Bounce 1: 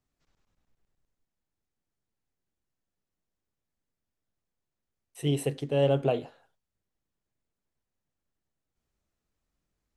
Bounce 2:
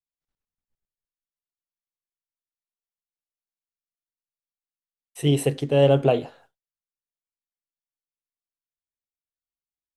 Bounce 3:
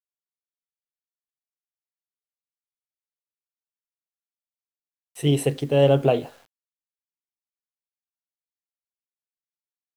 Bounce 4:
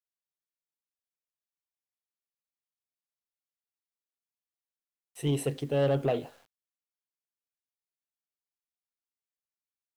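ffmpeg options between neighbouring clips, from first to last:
ffmpeg -i in.wav -af "agate=range=-33dB:threshold=-57dB:ratio=3:detection=peak,volume=7dB" out.wav
ffmpeg -i in.wav -af "acrusher=bits=8:mix=0:aa=0.000001" out.wav
ffmpeg -i in.wav -af "asoftclip=type=tanh:threshold=-12.5dB,volume=-6.5dB" out.wav

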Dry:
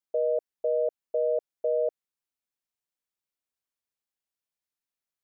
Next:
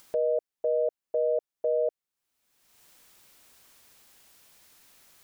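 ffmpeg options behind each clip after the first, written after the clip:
ffmpeg -i in.wav -af "acompressor=mode=upward:threshold=-32dB:ratio=2.5" out.wav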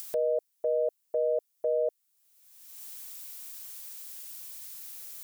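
ffmpeg -i in.wav -af "crystalizer=i=4.5:c=0,volume=-2dB" out.wav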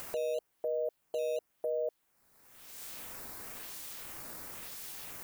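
ffmpeg -i in.wav -filter_complex "[0:a]alimiter=level_in=3.5dB:limit=-24dB:level=0:latency=1:release=22,volume=-3.5dB,asplit=2[link_01][link_02];[link_02]acrusher=samples=8:mix=1:aa=0.000001:lfo=1:lforange=12.8:lforate=0.98,volume=-5dB[link_03];[link_01][link_03]amix=inputs=2:normalize=0,volume=-3dB" out.wav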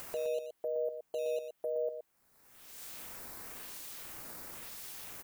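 ffmpeg -i in.wav -af "aecho=1:1:119:0.398,volume=-2dB" out.wav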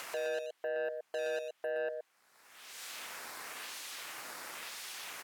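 ffmpeg -i in.wav -af "asoftclip=type=tanh:threshold=-34dB,bandpass=frequency=2200:width_type=q:width=0.51:csg=0,volume=9.5dB" out.wav

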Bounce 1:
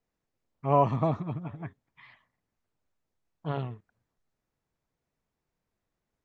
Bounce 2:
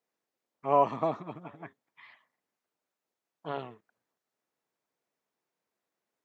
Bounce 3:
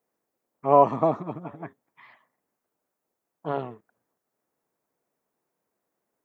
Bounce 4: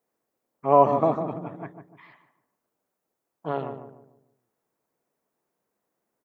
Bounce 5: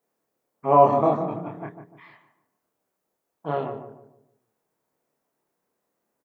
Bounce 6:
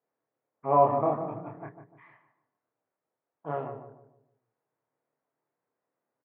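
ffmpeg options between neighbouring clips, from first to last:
ffmpeg -i in.wav -af "highpass=320" out.wav
ffmpeg -i in.wav -af "equalizer=frequency=3500:width=0.55:gain=-11,volume=8.5dB" out.wav
ffmpeg -i in.wav -filter_complex "[0:a]asplit=2[link_01][link_02];[link_02]adelay=149,lowpass=frequency=980:poles=1,volume=-7dB,asplit=2[link_03][link_04];[link_04]adelay=149,lowpass=frequency=980:poles=1,volume=0.4,asplit=2[link_05][link_06];[link_06]adelay=149,lowpass=frequency=980:poles=1,volume=0.4,asplit=2[link_07][link_08];[link_08]adelay=149,lowpass=frequency=980:poles=1,volume=0.4,asplit=2[link_09][link_10];[link_10]adelay=149,lowpass=frequency=980:poles=1,volume=0.4[link_11];[link_01][link_03][link_05][link_07][link_09][link_11]amix=inputs=6:normalize=0" out.wav
ffmpeg -i in.wav -filter_complex "[0:a]asplit=2[link_01][link_02];[link_02]adelay=27,volume=-2dB[link_03];[link_01][link_03]amix=inputs=2:normalize=0" out.wav
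ffmpeg -i in.wav -af "highpass=110,equalizer=frequency=120:width_type=q:width=4:gain=7,equalizer=frequency=200:width_type=q:width=4:gain=-9,equalizer=frequency=370:width_type=q:width=4:gain=-3,lowpass=frequency=2300:width=0.5412,lowpass=frequency=2300:width=1.3066,volume=-5.5dB" out.wav

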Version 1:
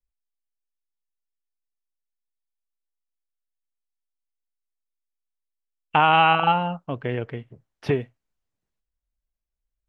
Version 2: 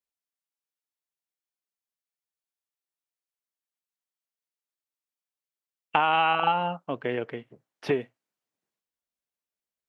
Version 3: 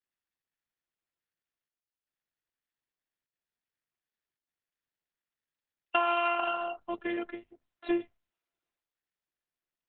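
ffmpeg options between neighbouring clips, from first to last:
ffmpeg -i in.wav -af "highpass=240,acompressor=threshold=-19dB:ratio=5" out.wav
ffmpeg -i in.wav -af "afftfilt=real='hypot(re,im)*cos(PI*b)':imag='0':win_size=512:overlap=0.75,aeval=exprs='0.299*(cos(1*acos(clip(val(0)/0.299,-1,1)))-cos(1*PI/2))+0.00237*(cos(8*acos(clip(val(0)/0.299,-1,1)))-cos(8*PI/2))':channel_layout=same" -ar 48000 -c:a libopus -b:a 8k out.opus

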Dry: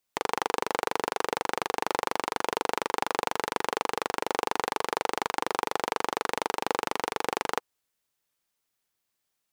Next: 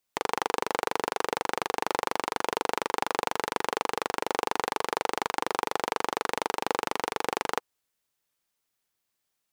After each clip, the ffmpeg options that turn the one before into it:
ffmpeg -i in.wav -af anull out.wav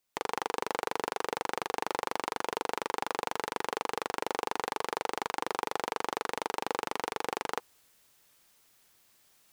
ffmpeg -i in.wav -af "alimiter=limit=-13.5dB:level=0:latency=1:release=17,areverse,acompressor=mode=upward:threshold=-50dB:ratio=2.5,areverse" out.wav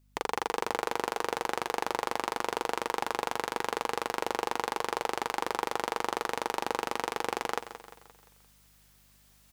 ffmpeg -i in.wav -filter_complex "[0:a]aeval=exprs='val(0)+0.000562*(sin(2*PI*50*n/s)+sin(2*PI*2*50*n/s)/2+sin(2*PI*3*50*n/s)/3+sin(2*PI*4*50*n/s)/4+sin(2*PI*5*50*n/s)/5)':channel_layout=same,asplit=2[link_01][link_02];[link_02]aecho=0:1:174|348|522|696|870:0.251|0.121|0.0579|0.0278|0.0133[link_03];[link_01][link_03]amix=inputs=2:normalize=0,volume=1.5dB" out.wav

